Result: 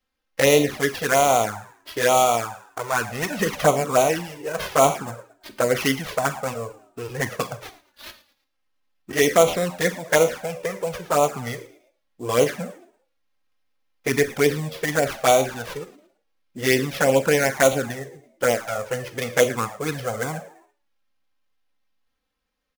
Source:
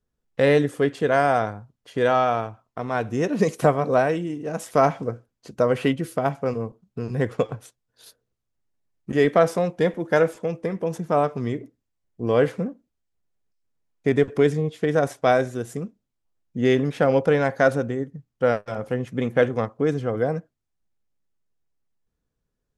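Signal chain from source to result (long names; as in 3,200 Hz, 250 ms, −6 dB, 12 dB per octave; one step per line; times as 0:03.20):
tilt shelving filter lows −7.5 dB, about 700 Hz
sample-rate reduction 8,100 Hz, jitter 20%
echo with shifted repeats 111 ms, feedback 39%, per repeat +85 Hz, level −19 dB
four-comb reverb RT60 0.38 s, combs from 30 ms, DRR 11 dB
flanger swept by the level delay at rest 3.8 ms, full sweep at −15 dBFS
level +4.5 dB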